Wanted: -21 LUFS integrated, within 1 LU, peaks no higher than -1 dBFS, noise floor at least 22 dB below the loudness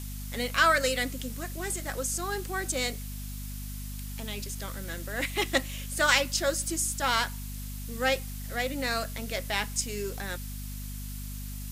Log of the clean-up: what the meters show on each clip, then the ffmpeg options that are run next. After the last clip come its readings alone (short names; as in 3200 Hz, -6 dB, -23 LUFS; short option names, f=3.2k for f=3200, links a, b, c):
hum 50 Hz; harmonics up to 250 Hz; hum level -36 dBFS; noise floor -38 dBFS; noise floor target -52 dBFS; loudness -30.0 LUFS; peak -5.0 dBFS; loudness target -21.0 LUFS
-> -af "bandreject=f=50:t=h:w=4,bandreject=f=100:t=h:w=4,bandreject=f=150:t=h:w=4,bandreject=f=200:t=h:w=4,bandreject=f=250:t=h:w=4"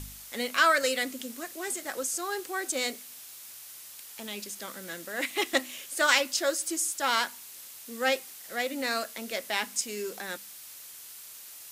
hum none; noise floor -47 dBFS; noise floor target -52 dBFS
-> -af "afftdn=nr=6:nf=-47"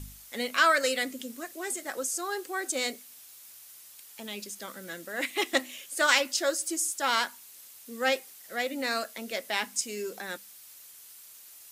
noise floor -51 dBFS; noise floor target -52 dBFS
-> -af "afftdn=nr=6:nf=-51"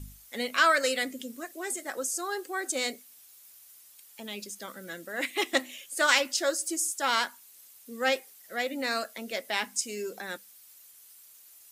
noise floor -55 dBFS; loudness -29.5 LUFS; peak -5.0 dBFS; loudness target -21.0 LUFS
-> -af "volume=8.5dB,alimiter=limit=-1dB:level=0:latency=1"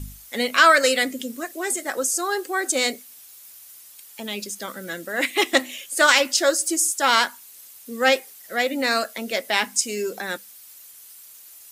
loudness -21.5 LUFS; peak -1.0 dBFS; noise floor -46 dBFS